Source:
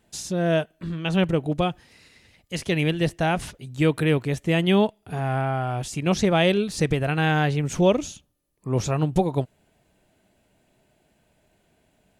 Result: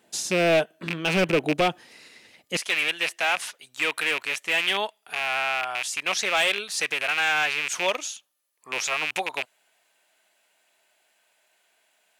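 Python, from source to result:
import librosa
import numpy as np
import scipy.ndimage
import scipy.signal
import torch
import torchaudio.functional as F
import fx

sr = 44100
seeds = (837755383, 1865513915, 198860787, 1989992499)

y = fx.rattle_buzz(x, sr, strikes_db=-27.0, level_db=-19.0)
y = fx.highpass(y, sr, hz=fx.steps((0.0, 280.0), (2.57, 1100.0)), slope=12)
y = np.clip(y, -10.0 ** (-19.5 / 20.0), 10.0 ** (-19.5 / 20.0))
y = y * librosa.db_to_amplitude(4.5)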